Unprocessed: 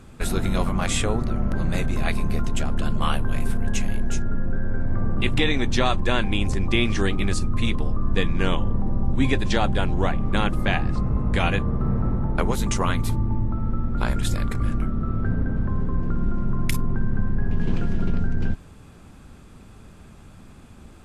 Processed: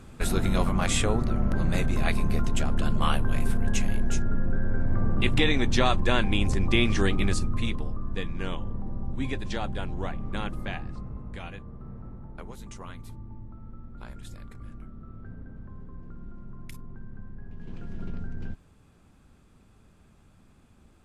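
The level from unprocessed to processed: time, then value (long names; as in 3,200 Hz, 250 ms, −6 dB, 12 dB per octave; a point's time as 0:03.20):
0:07.25 −1.5 dB
0:08.10 −10 dB
0:10.51 −10 dB
0:11.58 −19 dB
0:17.57 −19 dB
0:18.03 −12 dB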